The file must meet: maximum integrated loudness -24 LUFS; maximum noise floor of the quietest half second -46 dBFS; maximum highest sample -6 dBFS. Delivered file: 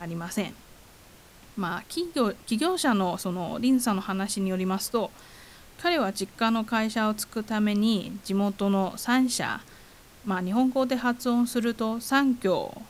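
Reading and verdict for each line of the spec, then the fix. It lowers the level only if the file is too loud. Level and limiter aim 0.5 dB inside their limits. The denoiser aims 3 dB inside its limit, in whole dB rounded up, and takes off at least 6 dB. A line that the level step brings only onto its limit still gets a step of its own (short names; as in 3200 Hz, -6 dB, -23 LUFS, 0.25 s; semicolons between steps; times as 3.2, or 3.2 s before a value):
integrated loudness -27.0 LUFS: OK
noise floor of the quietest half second -52 dBFS: OK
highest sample -10.5 dBFS: OK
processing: none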